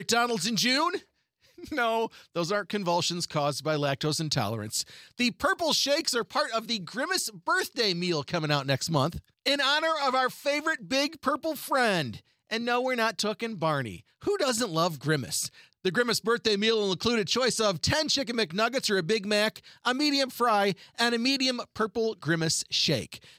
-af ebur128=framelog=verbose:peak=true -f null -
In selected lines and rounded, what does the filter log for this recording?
Integrated loudness:
  I:         -27.1 LUFS
  Threshold: -37.2 LUFS
Loudness range:
  LRA:         2.7 LU
  Threshold: -47.3 LUFS
  LRA low:   -28.8 LUFS
  LRA high:  -26.0 LUFS
True peak:
  Peak:       -9.5 dBFS